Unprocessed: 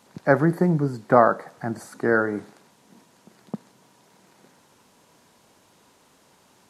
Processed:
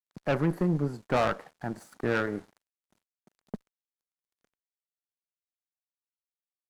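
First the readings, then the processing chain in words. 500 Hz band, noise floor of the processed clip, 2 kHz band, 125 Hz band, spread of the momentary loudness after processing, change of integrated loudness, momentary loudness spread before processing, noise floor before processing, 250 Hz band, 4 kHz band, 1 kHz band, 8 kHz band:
−9.0 dB, below −85 dBFS, −8.0 dB, −5.5 dB, 18 LU, −8.0 dB, 21 LU, −59 dBFS, −7.0 dB, can't be measured, −10.0 dB, −6.0 dB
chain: dead-zone distortion −47 dBFS
tube saturation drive 18 dB, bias 0.65
level −2 dB

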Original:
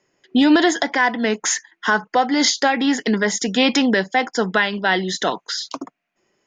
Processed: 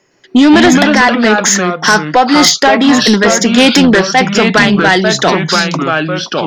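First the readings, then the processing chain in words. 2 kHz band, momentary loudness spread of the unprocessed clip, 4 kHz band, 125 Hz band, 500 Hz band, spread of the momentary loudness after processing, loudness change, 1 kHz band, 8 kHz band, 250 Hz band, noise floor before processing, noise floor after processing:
+10.0 dB, 8 LU, +10.5 dB, can't be measured, +10.5 dB, 5 LU, +10.0 dB, +10.0 dB, +10.5 dB, +10.5 dB, −77 dBFS, −42 dBFS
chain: delay with pitch and tempo change per echo 112 ms, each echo −3 semitones, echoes 2, each echo −6 dB
sine wavefolder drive 6 dB, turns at −2.5 dBFS
level +1 dB

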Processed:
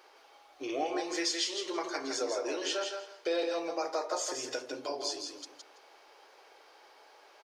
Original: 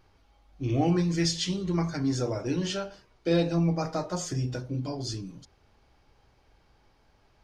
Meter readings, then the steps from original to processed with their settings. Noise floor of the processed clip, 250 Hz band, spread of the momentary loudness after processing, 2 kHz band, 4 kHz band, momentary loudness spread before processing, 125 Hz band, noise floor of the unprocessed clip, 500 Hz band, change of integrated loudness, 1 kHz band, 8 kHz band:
−60 dBFS, −12.0 dB, 7 LU, +1.0 dB, 0.0 dB, 10 LU, below −35 dB, −64 dBFS, −2.0 dB, −5.5 dB, 0.0 dB, +0.5 dB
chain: inverse Chebyshev high-pass filter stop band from 200 Hz, stop band 40 dB
downward compressor 2 to 1, threshold −48 dBFS, peak gain reduction 13 dB
on a send: repeating echo 165 ms, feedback 18%, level −5.5 dB
on the sum: level +9 dB

